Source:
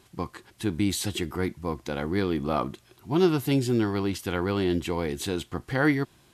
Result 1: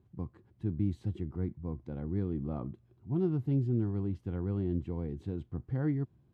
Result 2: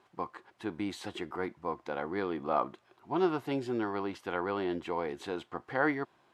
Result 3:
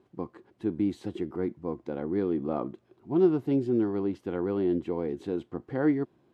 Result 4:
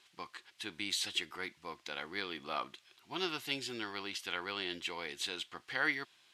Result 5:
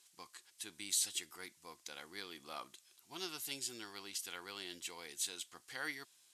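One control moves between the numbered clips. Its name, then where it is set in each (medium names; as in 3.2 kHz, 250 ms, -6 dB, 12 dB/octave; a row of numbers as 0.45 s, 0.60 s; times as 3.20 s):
band-pass filter, frequency: 100 Hz, 880 Hz, 350 Hz, 3.1 kHz, 7.9 kHz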